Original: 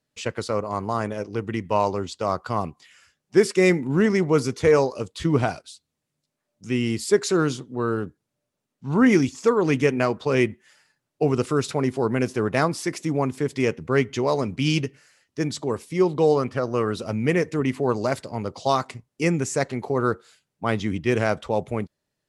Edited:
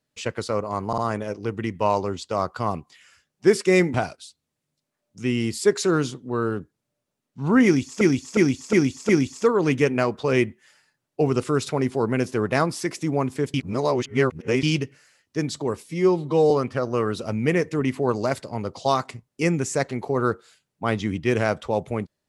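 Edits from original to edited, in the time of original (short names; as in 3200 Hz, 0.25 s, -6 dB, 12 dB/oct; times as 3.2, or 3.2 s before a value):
0.88 stutter 0.05 s, 3 plays
3.84–5.4 cut
9.11–9.47 loop, 5 plays
13.56–14.65 reverse
15.88–16.31 stretch 1.5×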